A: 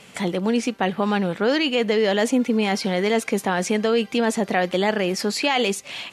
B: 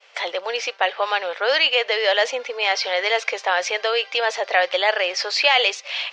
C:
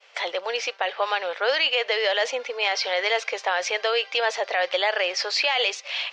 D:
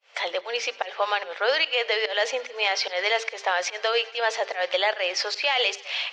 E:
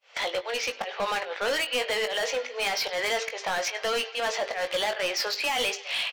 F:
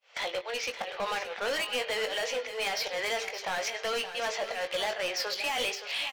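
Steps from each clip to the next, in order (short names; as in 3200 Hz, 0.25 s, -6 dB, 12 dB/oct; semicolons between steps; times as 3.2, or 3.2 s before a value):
elliptic band-pass 540–5600 Hz, stop band 40 dB; expander -44 dBFS; dynamic EQ 3100 Hz, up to +5 dB, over -38 dBFS, Q 0.74; gain +3 dB
limiter -10 dBFS, peak gain reduction 6.5 dB; gain -2 dB
pump 146 bpm, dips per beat 1, -23 dB, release 0.167 s; notches 50/100/150/200/250/300/350/400/450 Hz; thinning echo 99 ms, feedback 77%, high-pass 480 Hz, level -22 dB
overloaded stage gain 24.5 dB; doubler 20 ms -8 dB
rattling part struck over -53 dBFS, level -32 dBFS; echo 0.572 s -11 dB; gain -4 dB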